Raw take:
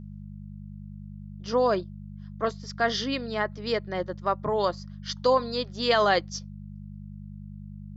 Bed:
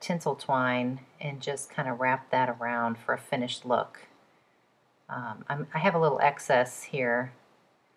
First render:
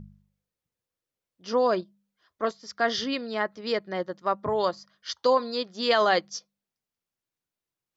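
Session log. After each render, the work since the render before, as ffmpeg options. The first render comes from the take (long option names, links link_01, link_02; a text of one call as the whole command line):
ffmpeg -i in.wav -af "bandreject=frequency=50:width_type=h:width=4,bandreject=frequency=100:width_type=h:width=4,bandreject=frequency=150:width_type=h:width=4,bandreject=frequency=200:width_type=h:width=4" out.wav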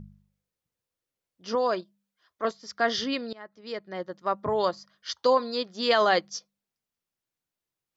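ffmpeg -i in.wav -filter_complex "[0:a]asettb=1/sr,asplit=3[link_01][link_02][link_03];[link_01]atrim=end=1.554[link_04];[link_02]atrim=start=1.55:end=2.45,asetpts=PTS-STARTPTS,afade=type=in:duration=0.004:curve=qsin,afade=type=out:start_time=0.896:duration=0.004:curve=qsin,lowshelf=frequency=430:gain=-7.5[link_05];[link_03]atrim=start=2.446[link_06];[link_04][link_05]acrossfade=duration=0.004:curve1=hsin:curve2=qsin[link_07];[link_07][link_06]acrossfade=duration=0.004:curve1=qsin:curve2=hsin,asplit=2[link_08][link_09];[link_08]atrim=end=3.33,asetpts=PTS-STARTPTS,afade=type=out:start_time=3.326:duration=0.004:curve=hsin:silence=0.0707946[link_10];[link_09]atrim=start=3.33,asetpts=PTS-STARTPTS,afade=type=in:duration=1.14:silence=0.0707946[link_11];[link_10][link_11]concat=n=2:v=0:a=1" out.wav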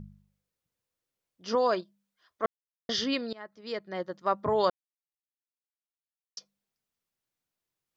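ffmpeg -i in.wav -filter_complex "[0:a]asplit=5[link_01][link_02][link_03][link_04][link_05];[link_01]atrim=end=2.46,asetpts=PTS-STARTPTS,afade=type=out:start_time=2.456:duration=0.004:curve=hsin[link_06];[link_02]atrim=start=2.46:end=2.89,asetpts=PTS-STARTPTS,volume=0[link_07];[link_03]atrim=start=2.89:end=4.7,asetpts=PTS-STARTPTS,afade=type=in:duration=0.004:curve=hsin,afade=type=out:start_time=1.806:duration=0.004:curve=hsin[link_08];[link_04]atrim=start=4.7:end=6.37,asetpts=PTS-STARTPTS,volume=0[link_09];[link_05]atrim=start=6.37,asetpts=PTS-STARTPTS,afade=type=in:duration=0.004:curve=hsin[link_10];[link_06][link_07][link_08][link_09][link_10]concat=n=5:v=0:a=1" out.wav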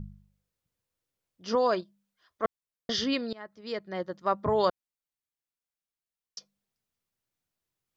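ffmpeg -i in.wav -af "lowshelf=frequency=130:gain=8" out.wav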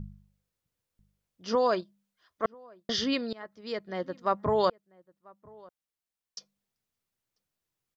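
ffmpeg -i in.wav -filter_complex "[0:a]asplit=2[link_01][link_02];[link_02]adelay=991.3,volume=-25dB,highshelf=frequency=4000:gain=-22.3[link_03];[link_01][link_03]amix=inputs=2:normalize=0" out.wav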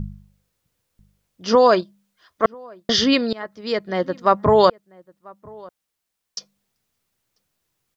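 ffmpeg -i in.wav -af "volume=11.5dB,alimiter=limit=-3dB:level=0:latency=1" out.wav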